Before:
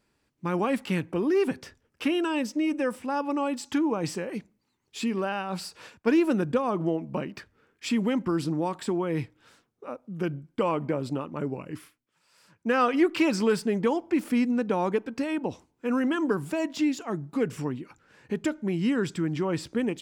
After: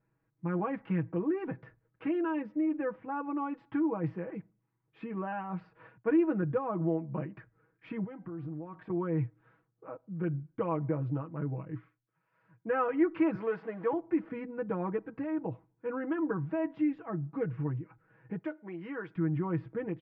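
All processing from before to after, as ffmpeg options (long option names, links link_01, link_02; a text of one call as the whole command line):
ffmpeg -i in.wav -filter_complex "[0:a]asettb=1/sr,asplit=3[link_01][link_02][link_03];[link_01]atrim=end=8.044[link_04];[link_02]atrim=start=8.04:end=8.9,asetpts=PTS-STARTPTS,afade=type=in:duration=0.004:curve=qsin,afade=type=out:start_time=0.856:duration=0.004:curve=qsin,acompressor=threshold=-37dB:ratio=3:attack=3.2:release=140:knee=1:detection=peak,aeval=exprs='val(0)+0.00141*sin(2*PI*740*n/s)':channel_layout=same,bandreject=frequency=391.5:width_type=h:width=4,bandreject=frequency=783:width_type=h:width=4,bandreject=frequency=1174.5:width_type=h:width=4,bandreject=frequency=1566:width_type=h:width=4,bandreject=frequency=1957.5:width_type=h:width=4,bandreject=frequency=2349:width_type=h:width=4,bandreject=frequency=2740.5:width_type=h:width=4,bandreject=frequency=3132:width_type=h:width=4,bandreject=frequency=3523.5:width_type=h:width=4,bandreject=frequency=3915:width_type=h:width=4,bandreject=frequency=4306.5:width_type=h:width=4,bandreject=frequency=4698:width_type=h:width=4,bandreject=frequency=5089.5:width_type=h:width=4,bandreject=frequency=5481:width_type=h:width=4,bandreject=frequency=5872.5:width_type=h:width=4,bandreject=frequency=6264:width_type=h:width=4,bandreject=frequency=6655.5:width_type=h:width=4,bandreject=frequency=7047:width_type=h:width=4,bandreject=frequency=7438.5:width_type=h:width=4,bandreject=frequency=7830:width_type=h:width=4,bandreject=frequency=8221.5:width_type=h:width=4,bandreject=frequency=8613:width_type=h:width=4,bandreject=frequency=9004.5:width_type=h:width=4,bandreject=frequency=9396:width_type=h:width=4,bandreject=frequency=9787.5:width_type=h:width=4,bandreject=frequency=10179:width_type=h:width=4,bandreject=frequency=10570.5:width_type=h:width=4,bandreject=frequency=10962:width_type=h:width=4,bandreject=frequency=11353.5:width_type=h:width=4,bandreject=frequency=11745:width_type=h:width=4,bandreject=frequency=12136.5:width_type=h:width=4,bandreject=frequency=12528:width_type=h:width=4,bandreject=frequency=12919.5:width_type=h:width=4,bandreject=frequency=13311:width_type=h:width=4,bandreject=frequency=13702.5:width_type=h:width=4,bandreject=frequency=14094:width_type=h:width=4,bandreject=frequency=14485.5:width_type=h:width=4,bandreject=frequency=14877:width_type=h:width=4,bandreject=frequency=15268.5:width_type=h:width=4[link_05];[link_03]atrim=start=8.896[link_06];[link_04][link_05]acrossfade=duration=0.004:curve1=hsin:curve2=qsin[link_07];[link_07][link_06]acrossfade=duration=0.004:curve1=qsin:curve2=hsin,asettb=1/sr,asplit=3[link_08][link_09][link_10];[link_08]atrim=end=13.354[link_11];[link_09]atrim=start=13.35:end=13.93,asetpts=PTS-STARTPTS,afade=type=in:duration=0.004:curve=qsin,afade=type=out:start_time=0.576:duration=0.004:curve=qsin,aeval=exprs='val(0)+0.5*0.0178*sgn(val(0))':channel_layout=same,highpass=370[link_12];[link_10]atrim=start=13.926[link_13];[link_11][link_12]acrossfade=duration=0.004:curve1=hsin:curve2=qsin[link_14];[link_14][link_13]acrossfade=duration=0.004:curve1=qsin:curve2=hsin,asettb=1/sr,asplit=3[link_15][link_16][link_17];[link_15]atrim=end=18.394[link_18];[link_16]atrim=start=18.39:end=19.16,asetpts=PTS-STARTPTS,afade=type=in:duration=0.004:curve=qsin,afade=type=out:start_time=0.766:duration=0.004:curve=qsin,highpass=430,highshelf=frequency=4700:gain=5.5[link_19];[link_17]atrim=start=19.156[link_20];[link_18][link_19]acrossfade=duration=0.004:curve1=hsin:curve2=qsin[link_21];[link_21][link_20]acrossfade=duration=0.004:curve1=qsin:curve2=hsin,lowpass=frequency=1900:width=0.5412,lowpass=frequency=1900:width=1.3066,equalizer=frequency=120:width=3.3:gain=13,aecho=1:1:6.2:0.8,volume=-8.5dB" out.wav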